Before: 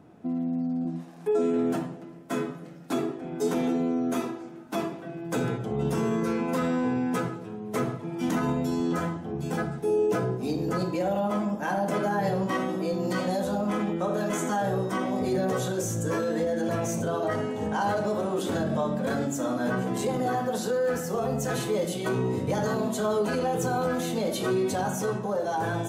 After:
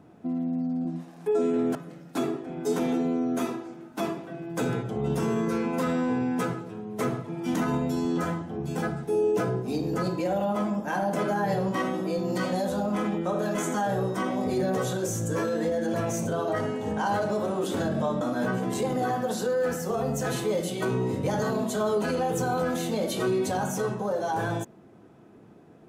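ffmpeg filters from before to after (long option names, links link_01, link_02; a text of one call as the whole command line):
ffmpeg -i in.wav -filter_complex "[0:a]asplit=3[link_01][link_02][link_03];[link_01]atrim=end=1.752[link_04];[link_02]atrim=start=2.498:end=18.962[link_05];[link_03]atrim=start=19.448[link_06];[link_04][link_05]acrossfade=duration=0.004:curve1=hsin:curve2=hsin[link_07];[link_07][link_06]acrossfade=duration=0.004:curve1=hsin:curve2=hsin" out.wav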